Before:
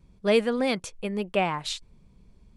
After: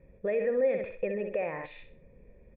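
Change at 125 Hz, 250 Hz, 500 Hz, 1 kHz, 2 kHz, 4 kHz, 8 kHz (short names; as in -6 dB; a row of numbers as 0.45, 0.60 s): -10.0 dB, -11.0 dB, -2.0 dB, -12.5 dB, -8.0 dB, under -25 dB, under -40 dB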